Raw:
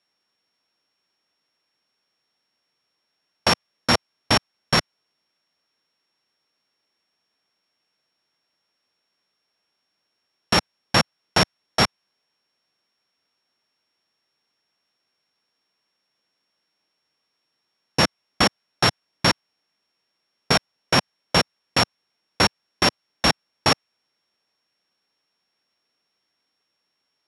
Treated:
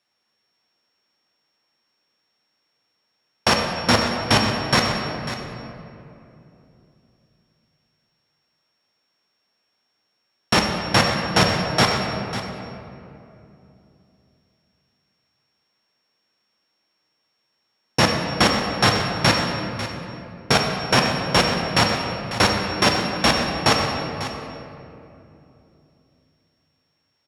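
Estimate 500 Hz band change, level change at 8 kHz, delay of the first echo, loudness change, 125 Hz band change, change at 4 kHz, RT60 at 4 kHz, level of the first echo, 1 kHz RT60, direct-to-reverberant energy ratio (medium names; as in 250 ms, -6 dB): +4.5 dB, +2.0 dB, 546 ms, +1.5 dB, +5.0 dB, +1.5 dB, 1.7 s, -12.5 dB, 2.5 s, 0.5 dB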